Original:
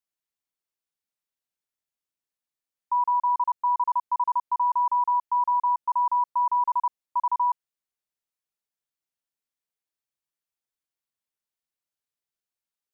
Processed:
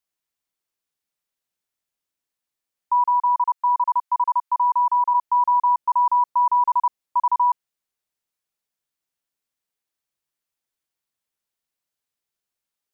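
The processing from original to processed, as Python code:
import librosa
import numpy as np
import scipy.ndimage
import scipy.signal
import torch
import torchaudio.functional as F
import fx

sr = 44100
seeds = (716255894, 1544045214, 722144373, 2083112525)

y = fx.highpass(x, sr, hz=820.0, slope=24, at=(3.05, 5.13), fade=0.02)
y = y * 10.0 ** (5.0 / 20.0)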